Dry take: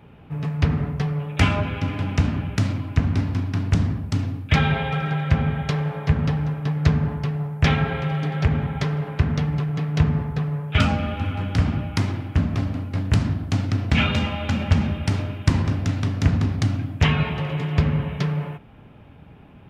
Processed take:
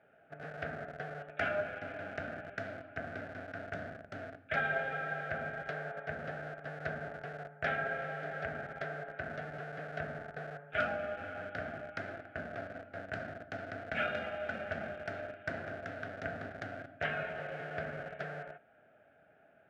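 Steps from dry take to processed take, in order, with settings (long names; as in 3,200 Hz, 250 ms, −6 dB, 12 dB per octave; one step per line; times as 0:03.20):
in parallel at −6.5 dB: comparator with hysteresis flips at −23.5 dBFS
on the sum: pair of resonant band-passes 1,000 Hz, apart 1.2 octaves
level −1.5 dB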